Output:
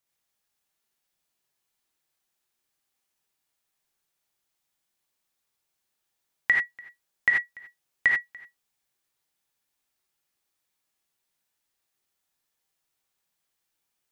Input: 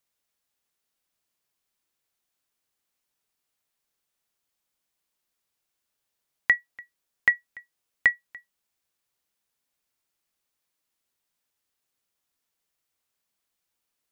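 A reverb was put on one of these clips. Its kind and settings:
reverb whose tail is shaped and stops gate 110 ms rising, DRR −1.5 dB
level −2.5 dB

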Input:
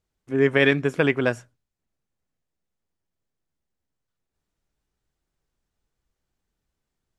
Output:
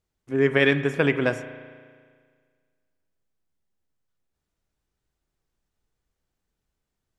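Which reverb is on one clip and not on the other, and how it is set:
spring reverb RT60 1.8 s, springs 35 ms, chirp 45 ms, DRR 10.5 dB
level −1 dB

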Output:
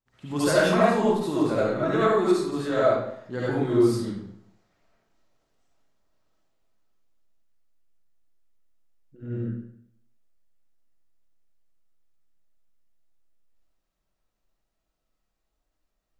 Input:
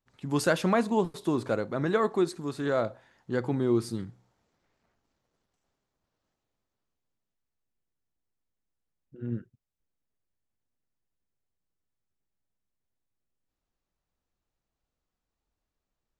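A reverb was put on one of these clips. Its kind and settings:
comb and all-pass reverb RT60 0.71 s, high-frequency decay 0.85×, pre-delay 30 ms, DRR −9 dB
level −4 dB

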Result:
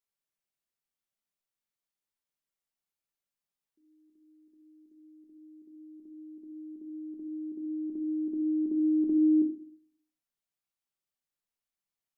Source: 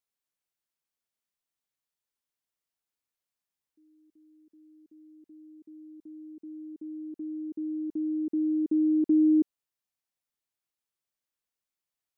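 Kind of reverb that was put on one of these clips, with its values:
rectangular room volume 330 cubic metres, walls furnished, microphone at 1.2 metres
level −4.5 dB

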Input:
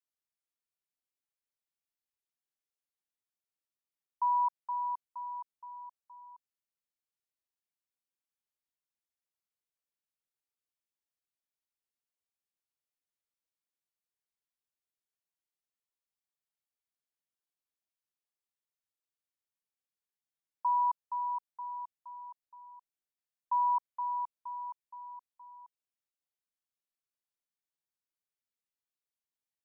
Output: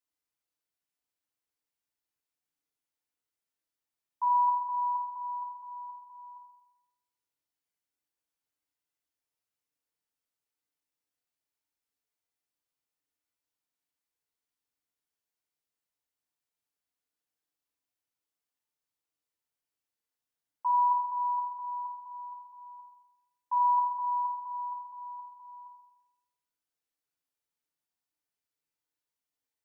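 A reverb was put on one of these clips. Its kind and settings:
feedback delay network reverb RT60 0.93 s, low-frequency decay 0.85×, high-frequency decay 0.6×, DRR −2 dB
level −1 dB

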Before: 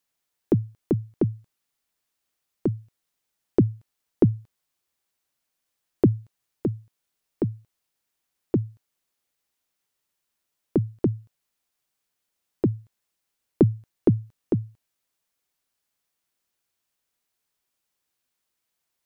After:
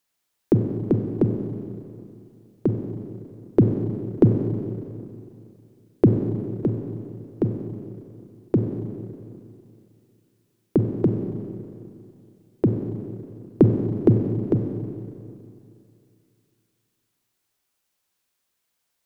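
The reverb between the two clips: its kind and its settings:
four-comb reverb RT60 2.6 s, combs from 31 ms, DRR 3.5 dB
level +2.5 dB

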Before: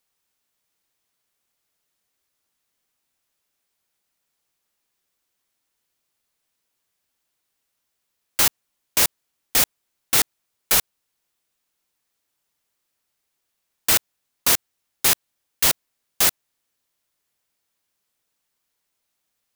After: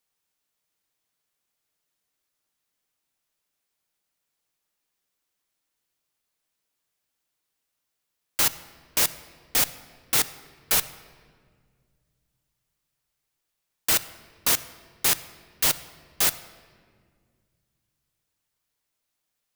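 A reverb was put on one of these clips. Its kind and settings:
rectangular room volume 3,100 cubic metres, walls mixed, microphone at 0.48 metres
level −4 dB

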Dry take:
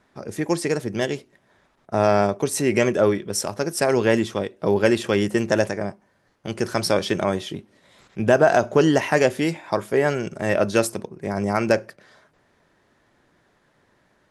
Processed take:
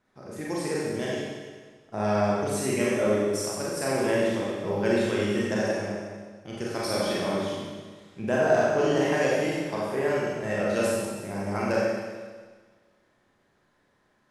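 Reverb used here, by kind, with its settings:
four-comb reverb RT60 1.5 s, combs from 30 ms, DRR −6 dB
level −12 dB

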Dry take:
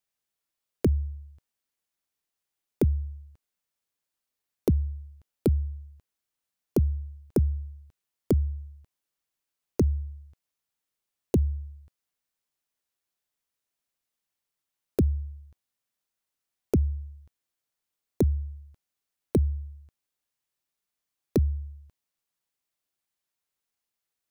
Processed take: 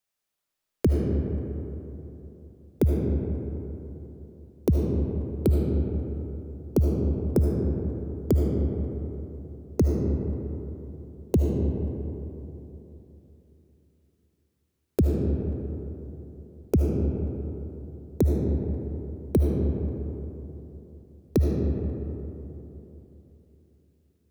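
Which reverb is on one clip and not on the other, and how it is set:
comb and all-pass reverb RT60 3.4 s, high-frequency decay 0.4×, pre-delay 35 ms, DRR −0.5 dB
level +1 dB

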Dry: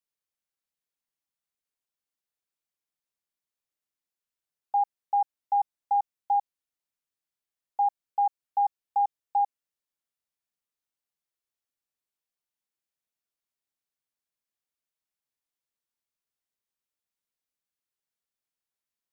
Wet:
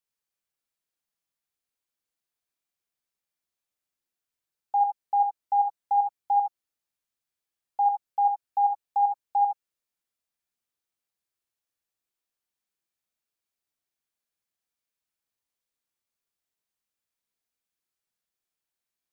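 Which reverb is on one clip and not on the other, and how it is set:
reverb whose tail is shaped and stops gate 90 ms rising, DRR 2 dB

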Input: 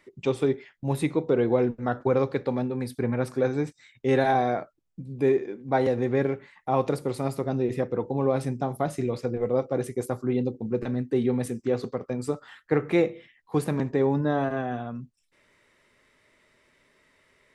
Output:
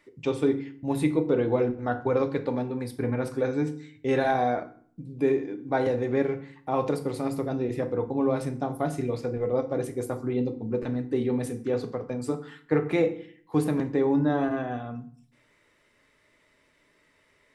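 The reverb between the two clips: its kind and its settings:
feedback delay network reverb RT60 0.52 s, low-frequency decay 1.4×, high-frequency decay 0.75×, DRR 7 dB
level −2 dB

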